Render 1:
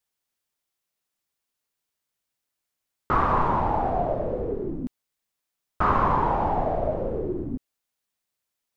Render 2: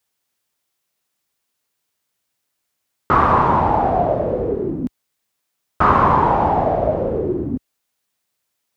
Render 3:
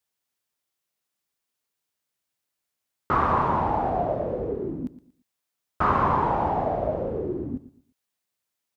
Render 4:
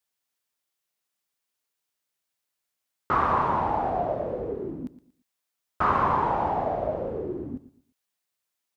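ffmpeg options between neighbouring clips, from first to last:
-af "highpass=59,volume=8dB"
-af "aecho=1:1:117|234|351:0.15|0.0434|0.0126,volume=-8dB"
-af "lowshelf=f=400:g=-5"

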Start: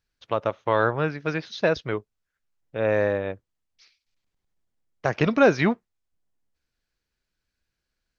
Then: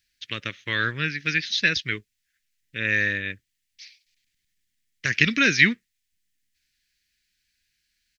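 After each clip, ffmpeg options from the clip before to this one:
-af "firequalizer=gain_entry='entry(260,0);entry(740,-26);entry(1800,14)':delay=0.05:min_phase=1,volume=-2dB"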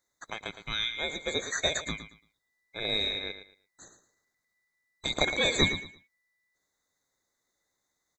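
-af "afftfilt=real='real(if(lt(b,920),b+92*(1-2*mod(floor(b/92),2)),b),0)':imag='imag(if(lt(b,920),b+92*(1-2*mod(floor(b/92),2)),b),0)':win_size=2048:overlap=0.75,aecho=1:1:113|226|339:0.282|0.0676|0.0162,volume=-7dB"

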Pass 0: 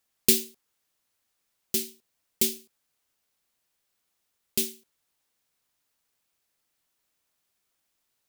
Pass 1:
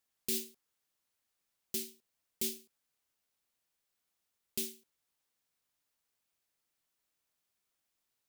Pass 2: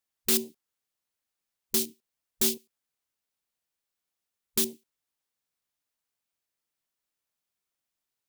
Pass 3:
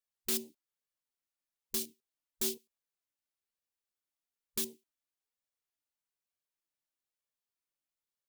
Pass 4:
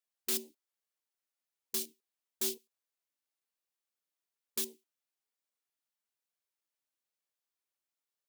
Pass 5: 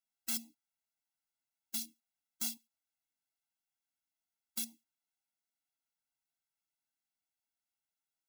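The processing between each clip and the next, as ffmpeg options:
-af "alimiter=limit=-15.5dB:level=0:latency=1:release=54,volume=-6.5dB"
-af "afwtdn=0.00398,aeval=exprs='0.0841*sin(PI/2*2*val(0)/0.0841)':c=same,volume=3.5dB"
-af "flanger=delay=1.7:depth=1.8:regen=58:speed=1.1:shape=sinusoidal,volume=-4dB"
-af "highpass=270"
-af "afftfilt=real='re*eq(mod(floor(b*sr/1024/320),2),0)':imag='im*eq(mod(floor(b*sr/1024/320),2),0)':win_size=1024:overlap=0.75"

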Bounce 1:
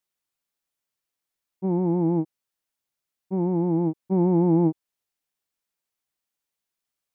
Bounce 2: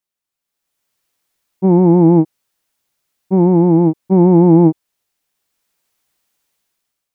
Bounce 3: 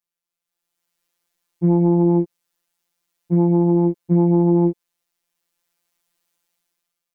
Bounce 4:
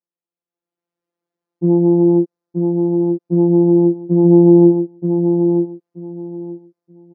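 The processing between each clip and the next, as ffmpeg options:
-af "dynaudnorm=f=210:g=7:m=16dB"
-af "afftfilt=real='hypot(re,im)*cos(PI*b)':imag='0':win_size=1024:overlap=0.75,acompressor=threshold=-11dB:ratio=4,volume=-1dB"
-af "bandpass=f=340:t=q:w=1.2:csg=0,aecho=1:1:929|1858|2787:0.631|0.133|0.0278,volume=5.5dB"

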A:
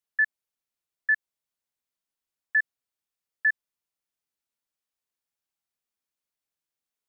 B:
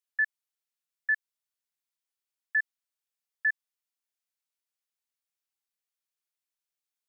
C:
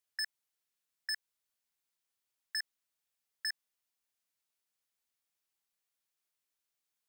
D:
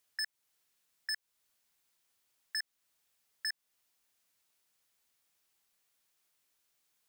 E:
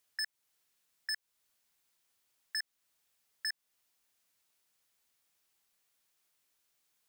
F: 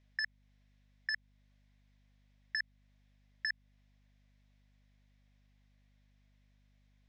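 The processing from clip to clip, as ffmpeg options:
-af "highpass=f=1.4k:p=1,volume=-1.5dB"
-filter_complex "[0:a]asplit=2[a][b];[b]alimiter=level_in=7dB:limit=-24dB:level=0:latency=1:release=12,volume=-7dB,volume=-1.5dB[c];[a][c]amix=inputs=2:normalize=0,aeval=exprs='0.0562*(abs(mod(val(0)/0.0562+3,4)-2)-1)':c=same,volume=-2.5dB"
-af "alimiter=level_in=13dB:limit=-24dB:level=0:latency=1:release=285,volume=-13dB,volume=9.5dB"
-af anull
-af "highpass=500,equalizer=f=600:t=q:w=4:g=6,equalizer=f=890:t=q:w=4:g=-4,equalizer=f=1.3k:t=q:w=4:g=-9,equalizer=f=2k:t=q:w=4:g=4,equalizer=f=2.9k:t=q:w=4:g=-5,equalizer=f=4.5k:t=q:w=4:g=-7,lowpass=f=4.6k:w=0.5412,lowpass=f=4.6k:w=1.3066,aeval=exprs='val(0)+0.000251*(sin(2*PI*50*n/s)+sin(2*PI*2*50*n/s)/2+sin(2*PI*3*50*n/s)/3+sin(2*PI*4*50*n/s)/4+sin(2*PI*5*50*n/s)/5)':c=same,volume=4.5dB"

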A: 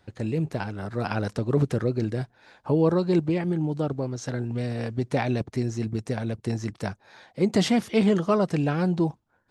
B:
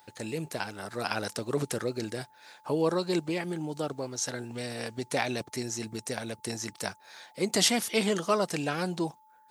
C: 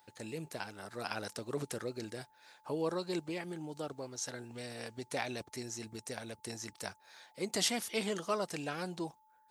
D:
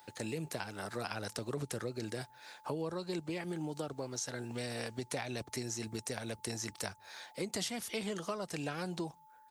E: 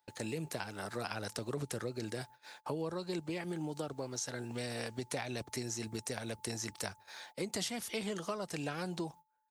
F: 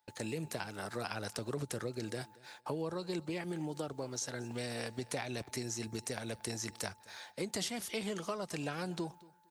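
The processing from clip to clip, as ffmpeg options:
-af "aemphasis=mode=production:type=riaa,aeval=exprs='val(0)+0.00158*sin(2*PI*870*n/s)':c=same,volume=-1.5dB"
-af "asubboost=boost=3:cutoff=70,volume=-7.5dB"
-filter_complex "[0:a]acrossover=split=130[a][b];[a]aecho=1:1:150:0.0631[c];[b]acompressor=threshold=-43dB:ratio=6[d];[c][d]amix=inputs=2:normalize=0,volume=7dB"
-af "agate=range=-20dB:threshold=-53dB:ratio=16:detection=peak"
-af "areverse,acompressor=mode=upward:threshold=-59dB:ratio=2.5,areverse,aecho=1:1:229|458:0.0794|0.0167"

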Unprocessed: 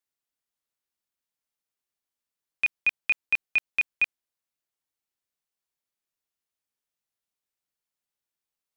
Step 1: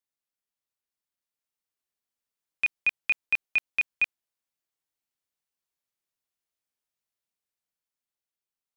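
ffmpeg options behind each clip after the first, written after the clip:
-af "dynaudnorm=f=440:g=7:m=3.5dB,volume=-4.5dB"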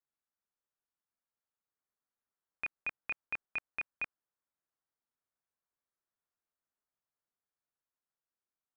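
-af "highshelf=f=2.1k:t=q:w=1.5:g=-12,volume=-2.5dB"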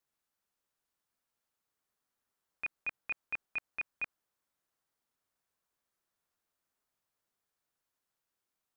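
-af "alimiter=level_in=11dB:limit=-24dB:level=0:latency=1,volume=-11dB,volume=7dB"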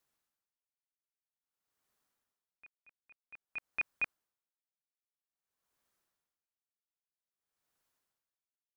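-af "aeval=exprs='val(0)*pow(10,-32*(0.5-0.5*cos(2*PI*0.51*n/s))/20)':c=same,volume=4.5dB"

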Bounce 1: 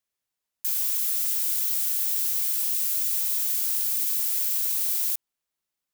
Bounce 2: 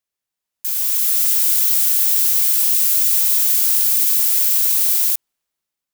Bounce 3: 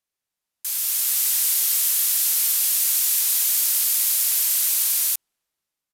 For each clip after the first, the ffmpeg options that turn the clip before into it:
-af "dynaudnorm=f=240:g=7:m=12dB"
-af "aresample=32000,aresample=44100"

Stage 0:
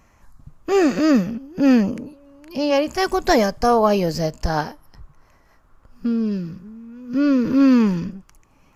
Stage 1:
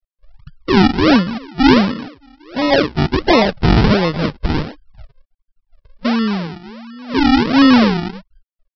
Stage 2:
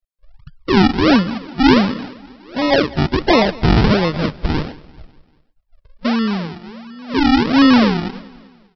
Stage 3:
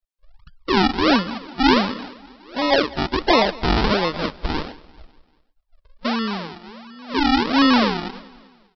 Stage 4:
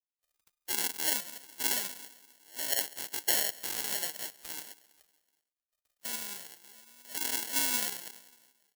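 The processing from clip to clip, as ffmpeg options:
-af "afftfilt=real='re*gte(hypot(re,im),0.0282)':imag='im*gte(hypot(re,im),0.0282)':win_size=1024:overlap=0.75,aresample=11025,acrusher=samples=14:mix=1:aa=0.000001:lfo=1:lforange=14:lforate=1.4,aresample=44100,volume=4.5dB"
-af "aecho=1:1:196|392|588|784:0.0841|0.0421|0.021|0.0105,volume=-1dB"
-af "equalizer=f=125:t=o:w=1:g=-12,equalizer=f=1k:t=o:w=1:g=4,equalizer=f=4k:t=o:w=1:g=4,volume=-4dB"
-af "acrusher=samples=36:mix=1:aa=0.000001,aderivative,volume=-2dB"

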